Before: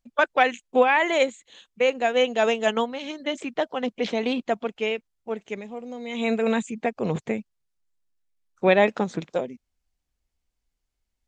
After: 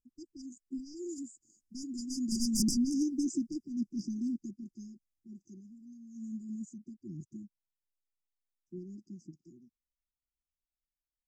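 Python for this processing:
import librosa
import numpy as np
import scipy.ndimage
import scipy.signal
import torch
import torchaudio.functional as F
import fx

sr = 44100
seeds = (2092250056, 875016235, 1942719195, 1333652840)

y = fx.doppler_pass(x, sr, speed_mps=11, closest_m=2.4, pass_at_s=2.77)
y = fx.fold_sine(y, sr, drive_db=15, ceiling_db=-11.5)
y = fx.brickwall_bandstop(y, sr, low_hz=370.0, high_hz=4700.0)
y = y * 10.0 ** (-8.0 / 20.0)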